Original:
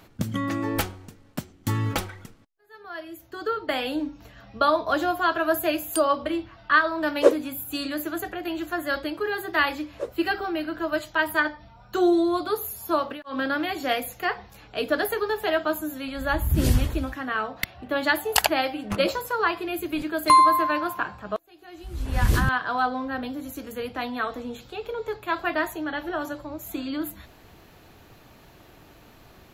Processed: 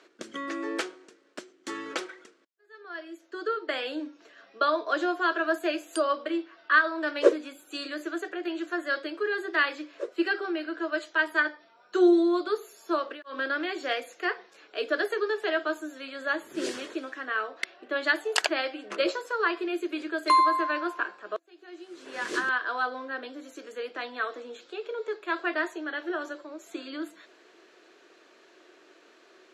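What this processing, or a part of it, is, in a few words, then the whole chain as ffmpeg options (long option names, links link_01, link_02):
phone speaker on a table: -af "highpass=frequency=350:width=0.5412,highpass=frequency=350:width=1.3066,equalizer=frequency=360:width_type=q:width=4:gain=8,equalizer=frequency=830:width_type=q:width=4:gain=-9,equalizer=frequency=1600:width_type=q:width=4:gain=4,lowpass=frequency=7900:width=0.5412,lowpass=frequency=7900:width=1.3066,volume=-3.5dB"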